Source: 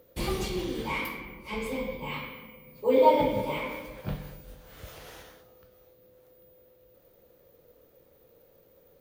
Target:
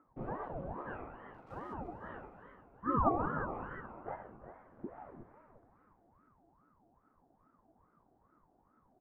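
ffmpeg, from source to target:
ffmpeg -i in.wav -filter_complex "[0:a]lowpass=frequency=1200:width=0.5412,lowpass=frequency=1200:width=1.3066,asettb=1/sr,asplit=3[link_01][link_02][link_03];[link_01]atrim=end=1.344[link_04];[link_02]atrim=start=1.34:end=1.74,asetpts=PTS-STARTPTS,afade=type=in:duration=0.004:curve=qsin,afade=type=out:start_time=0.396:duration=0.004:curve=qsin,aeval=exprs='sgn(val(0))*max(abs(val(0))-0.00158,0)':channel_layout=same[link_05];[link_03]atrim=start=1.736[link_06];[link_04][link_05]acrossfade=duration=0.004:curve1=hsin:curve2=qsin[link_07];[link_07][link_06]acrossfade=duration=0.004:curve1=qsin:curve2=hsin,asettb=1/sr,asplit=3[link_08][link_09][link_10];[link_08]atrim=end=4.844[link_11];[link_09]atrim=start=4.84:end=5.24,asetpts=PTS-STARTPTS,afade=type=in:duration=0.004:curve=qsin,afade=type=out:start_time=0.396:duration=0.004:curve=qsin,aemphasis=mode=reproduction:type=bsi[link_12];[link_10]atrim=start=5.236[link_13];[link_11][link_12]acrossfade=duration=0.004:curve1=hsin:curve2=qsin[link_14];[link_14][link_13]acrossfade=duration=0.004:curve1=qsin:curve2=hsin,asplit=5[link_15][link_16][link_17][link_18][link_19];[link_16]adelay=352,afreqshift=120,volume=-12dB[link_20];[link_17]adelay=704,afreqshift=240,volume=-21.1dB[link_21];[link_18]adelay=1056,afreqshift=360,volume=-30.2dB[link_22];[link_19]adelay=1408,afreqshift=480,volume=-39.4dB[link_23];[link_15][link_20][link_21][link_22][link_23]amix=inputs=5:normalize=0,aeval=exprs='val(0)*sin(2*PI*490*n/s+490*0.65/2.4*sin(2*PI*2.4*n/s))':channel_layout=same,volume=-7dB" out.wav

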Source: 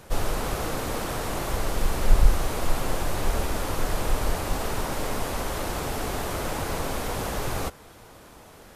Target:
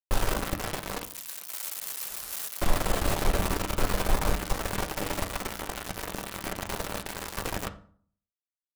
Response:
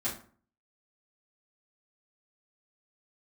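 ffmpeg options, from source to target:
-filter_complex "[0:a]aeval=exprs='val(0)*gte(abs(val(0)),0.075)':channel_layout=same,asettb=1/sr,asplit=3[link_01][link_02][link_03];[link_01]atrim=end=1.034[link_04];[link_02]atrim=start=1.03:end=2.61,asetpts=PTS-STARTPTS,afade=type=in:duration=0.004:curve=qsin,afade=type=out:start_time=1.576:duration=0.004:curve=qsin,aderivative[link_05];[link_03]atrim=start=2.606[link_06];[link_04][link_05]acrossfade=duration=0.004:curve1=hsin:curve2=qsin[link_07];[link_07][link_06]acrossfade=duration=0.004:curve1=qsin:curve2=hsin,asplit=2[link_08][link_09];[1:a]atrim=start_sample=2205,asetrate=37485,aresample=44100,lowpass=4400[link_10];[link_09][link_10]afir=irnorm=-1:irlink=0,volume=-11dB[link_11];[link_08][link_11]amix=inputs=2:normalize=0,volume=-2.5dB"

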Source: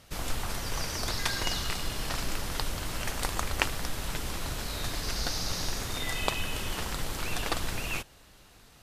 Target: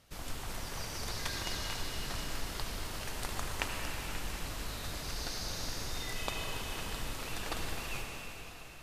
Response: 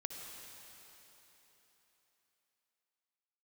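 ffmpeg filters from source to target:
-filter_complex "[1:a]atrim=start_sample=2205,asetrate=36162,aresample=44100[link_01];[0:a][link_01]afir=irnorm=-1:irlink=0,volume=-6dB"

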